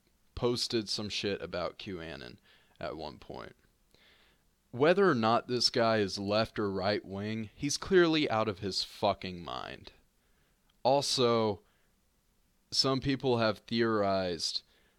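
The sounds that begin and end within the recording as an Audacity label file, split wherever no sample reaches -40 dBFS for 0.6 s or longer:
4.740000	9.880000	sound
10.850000	11.560000	sound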